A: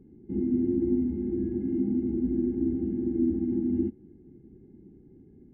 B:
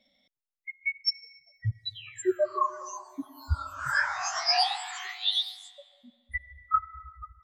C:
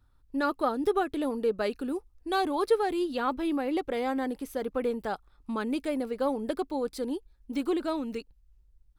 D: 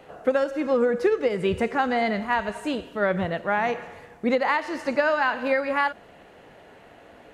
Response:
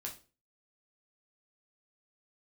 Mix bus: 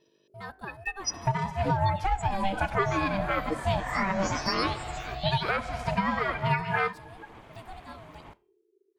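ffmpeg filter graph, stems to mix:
-filter_complex "[0:a]highpass=frequency=350:width=0.5412,highpass=frequency=350:width=1.3066,adelay=2500,volume=-0.5dB[link_01];[1:a]aeval=exprs='val(0)+0.000562*(sin(2*PI*50*n/s)+sin(2*PI*2*50*n/s)/2+sin(2*PI*3*50*n/s)/3+sin(2*PI*4*50*n/s)/4+sin(2*PI*5*50*n/s)/5)':channel_layout=same,volume=-1dB[link_02];[2:a]equalizer=frequency=260:width_type=o:width=2.3:gain=-6,bandreject=frequency=164.7:width_type=h:width=4,bandreject=frequency=329.4:width_type=h:width=4,bandreject=frequency=494.1:width_type=h:width=4,bandreject=frequency=658.8:width_type=h:width=4,bandreject=frequency=823.5:width_type=h:width=4,bandreject=frequency=988.2:width_type=h:width=4,bandreject=frequency=1152.9:width_type=h:width=4,bandreject=frequency=1317.6:width_type=h:width=4,bandreject=frequency=1482.3:width_type=h:width=4,bandreject=frequency=1647:width_type=h:width=4,bandreject=frequency=1811.7:width_type=h:width=4,bandreject=frequency=1976.4:width_type=h:width=4,bandreject=frequency=2141.1:width_type=h:width=4,bandreject=frequency=2305.8:width_type=h:width=4,bandreject=frequency=2470.5:width_type=h:width=4,bandreject=frequency=2635.2:width_type=h:width=4,bandreject=frequency=2799.9:width_type=h:width=4,bandreject=frequency=2964.6:width_type=h:width=4,volume=-8dB,asplit=2[link_03][link_04];[link_04]volume=-20dB[link_05];[3:a]aphaser=in_gain=1:out_gain=1:delay=5:decay=0.35:speed=1.1:type=sinusoidal,adelay=1000,volume=-0.5dB,asplit=2[link_06][link_07];[link_07]volume=-10dB[link_08];[4:a]atrim=start_sample=2205[link_09];[link_05][link_08]amix=inputs=2:normalize=0[link_10];[link_10][link_09]afir=irnorm=-1:irlink=0[link_11];[link_01][link_02][link_03][link_06][link_11]amix=inputs=5:normalize=0,aeval=exprs='val(0)*sin(2*PI*390*n/s)':channel_layout=same,alimiter=limit=-14.5dB:level=0:latency=1:release=378"

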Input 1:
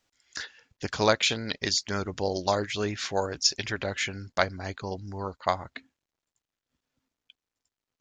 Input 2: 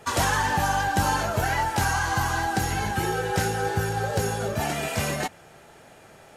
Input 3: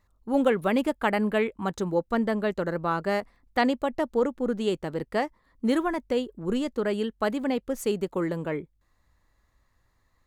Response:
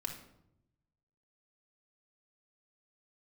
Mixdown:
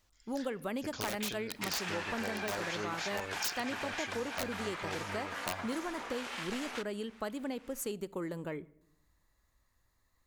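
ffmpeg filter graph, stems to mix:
-filter_complex "[0:a]highshelf=frequency=2300:gain=4.5,aeval=exprs='(mod(5.31*val(0)+1,2)-1)/5.31':channel_layout=same,volume=-4.5dB,asplit=2[link_01][link_02];[link_02]volume=-18.5dB[link_03];[1:a]aeval=exprs='abs(val(0))':channel_layout=same,bandpass=frequency=2000:width_type=q:width=0.62:csg=0,adelay=1550,volume=-3dB[link_04];[2:a]highshelf=frequency=5100:gain=10.5,volume=-8dB,asplit=3[link_05][link_06][link_07];[link_06]volume=-16dB[link_08];[link_07]apad=whole_len=352921[link_09];[link_01][link_09]sidechaincompress=threshold=-34dB:ratio=8:attack=46:release=522[link_10];[3:a]atrim=start_sample=2205[link_11];[link_03][link_08]amix=inputs=2:normalize=0[link_12];[link_12][link_11]afir=irnorm=-1:irlink=0[link_13];[link_10][link_04][link_05][link_13]amix=inputs=4:normalize=0,acompressor=threshold=-36dB:ratio=2.5"

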